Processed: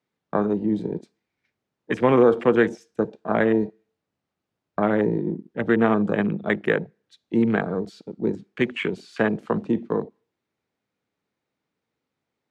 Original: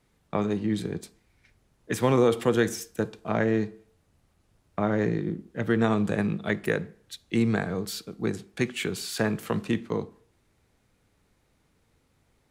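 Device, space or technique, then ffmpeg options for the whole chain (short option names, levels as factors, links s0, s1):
over-cleaned archive recording: -af "highpass=180,lowpass=5500,afwtdn=0.0178,volume=1.88"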